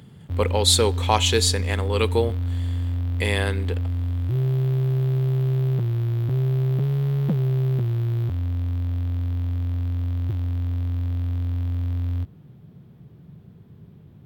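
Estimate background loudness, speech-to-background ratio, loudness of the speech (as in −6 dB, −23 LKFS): −25.0 LKFS, 2.5 dB, −22.5 LKFS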